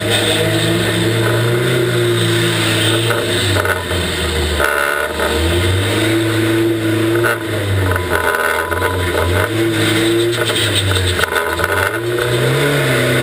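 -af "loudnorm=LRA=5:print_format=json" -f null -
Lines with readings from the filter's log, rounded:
"input_i" : "-14.7",
"input_tp" : "-2.7",
"input_lra" : "1.0",
"input_thresh" : "-24.7",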